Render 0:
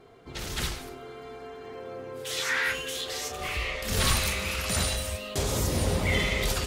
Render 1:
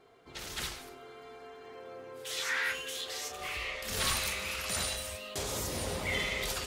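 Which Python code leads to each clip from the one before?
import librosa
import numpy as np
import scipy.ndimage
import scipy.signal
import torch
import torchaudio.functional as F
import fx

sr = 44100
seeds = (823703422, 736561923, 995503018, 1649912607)

y = fx.low_shelf(x, sr, hz=310.0, db=-9.5)
y = y * 10.0 ** (-4.5 / 20.0)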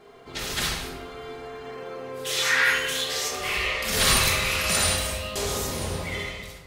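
y = fx.fade_out_tail(x, sr, length_s=1.77)
y = fx.room_shoebox(y, sr, seeds[0], volume_m3=490.0, walls='mixed', distance_m=1.3)
y = y * 10.0 ** (8.5 / 20.0)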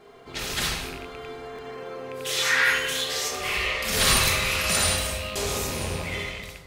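y = fx.rattle_buzz(x, sr, strikes_db=-40.0, level_db=-26.0)
y = fx.buffer_glitch(y, sr, at_s=(1.54,), block=1024, repeats=1)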